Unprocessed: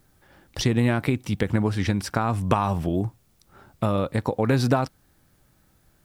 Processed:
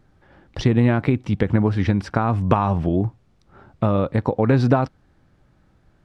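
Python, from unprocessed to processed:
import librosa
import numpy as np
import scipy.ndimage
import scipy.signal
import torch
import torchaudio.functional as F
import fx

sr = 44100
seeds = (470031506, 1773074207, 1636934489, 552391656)

y = fx.spacing_loss(x, sr, db_at_10k=23)
y = y * 10.0 ** (5.0 / 20.0)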